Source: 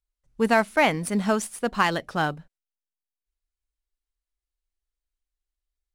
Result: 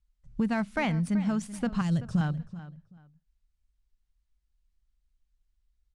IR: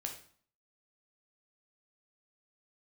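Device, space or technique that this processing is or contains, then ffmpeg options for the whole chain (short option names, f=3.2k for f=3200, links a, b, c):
jukebox: -filter_complex "[0:a]lowpass=7.6k,lowshelf=f=260:t=q:w=1.5:g=12,acompressor=threshold=-30dB:ratio=4,asettb=1/sr,asplit=3[a][b][c];[a]atrim=end=1.814[d];[b]atrim=start=1.81:end=2.21,asetpts=PTS-STARTPTS,afade=t=in:d=0.004:c=qsin,afade=t=out:st=0.396:d=0.004:c=qsin,equalizer=f=125:t=o:w=1:g=10,equalizer=f=250:t=o:w=1:g=-4,equalizer=f=1k:t=o:w=1:g=-9,equalizer=f=2k:t=o:w=1:g=-8,equalizer=f=4k:t=o:w=1:g=-4,equalizer=f=8k:t=o:w=1:g=9[e];[c]atrim=start=2.206[f];[d][e]acrossfade=d=0.004:c1=hsin:c2=qsin[g];[g][f]acrossfade=d=0.004:c1=qsin:c2=hsin,asplit=2[h][i];[i]adelay=382,lowpass=f=3.8k:p=1,volume=-15dB,asplit=2[j][k];[k]adelay=382,lowpass=f=3.8k:p=1,volume=0.23[l];[h][j][l]amix=inputs=3:normalize=0,volume=2dB"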